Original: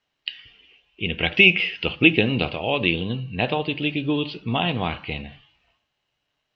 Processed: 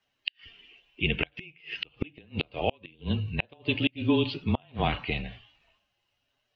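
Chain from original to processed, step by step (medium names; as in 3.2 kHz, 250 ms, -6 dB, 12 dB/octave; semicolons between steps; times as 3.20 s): coarse spectral quantiser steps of 15 dB; frequency shift -24 Hz; inverted gate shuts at -12 dBFS, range -34 dB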